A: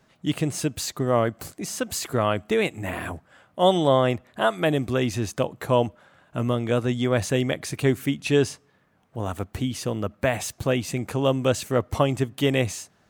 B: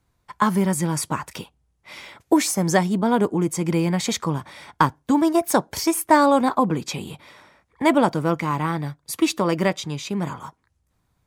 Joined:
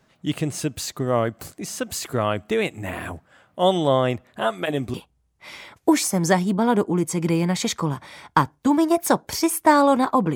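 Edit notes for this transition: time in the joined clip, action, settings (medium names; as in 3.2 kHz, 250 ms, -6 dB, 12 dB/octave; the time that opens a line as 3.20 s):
A
4.40–4.94 s: comb of notches 160 Hz
4.94 s: go over to B from 1.38 s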